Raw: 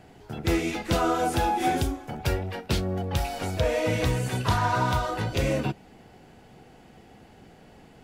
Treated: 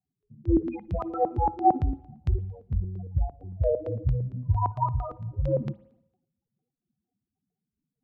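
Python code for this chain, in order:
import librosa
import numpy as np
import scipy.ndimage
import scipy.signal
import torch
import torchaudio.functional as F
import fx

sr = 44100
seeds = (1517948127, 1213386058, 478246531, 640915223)

y = fx.spec_topn(x, sr, count=4)
y = fx.filter_lfo_lowpass(y, sr, shape='square', hz=4.4, low_hz=260.0, high_hz=3600.0, q=0.72)
y = fx.rev_spring(y, sr, rt60_s=1.7, pass_ms=(52, 57), chirp_ms=25, drr_db=18.0)
y = fx.band_widen(y, sr, depth_pct=100)
y = y * 10.0 ** (1.0 / 20.0)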